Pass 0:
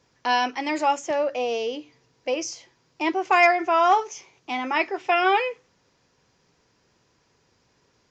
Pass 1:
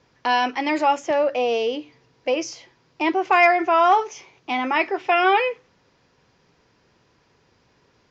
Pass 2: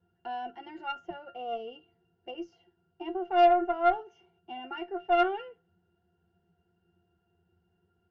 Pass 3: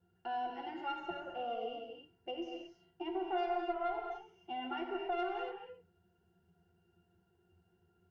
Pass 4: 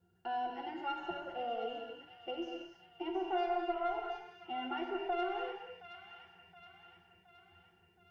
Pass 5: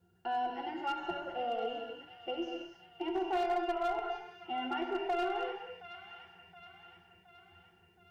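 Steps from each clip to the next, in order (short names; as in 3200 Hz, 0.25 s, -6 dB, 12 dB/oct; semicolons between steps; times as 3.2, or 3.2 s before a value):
LPF 4500 Hz 12 dB/oct; in parallel at -3 dB: limiter -19 dBFS, peak gain reduction 11.5 dB
octave resonator F, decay 0.15 s; added harmonics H 4 -20 dB, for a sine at -11 dBFS
compressor 3:1, threshold -35 dBFS, peak gain reduction 14 dB; reverb, pre-delay 3 ms, DRR 1 dB; gain -1.5 dB
thin delay 0.72 s, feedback 54%, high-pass 1600 Hz, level -7 dB; gain +1 dB
hard clip -30 dBFS, distortion -19 dB; gain +3 dB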